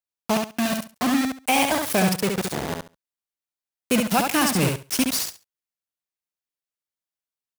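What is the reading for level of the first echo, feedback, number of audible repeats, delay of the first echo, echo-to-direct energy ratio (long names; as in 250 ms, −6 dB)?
−4.5 dB, 18%, 3, 69 ms, −4.5 dB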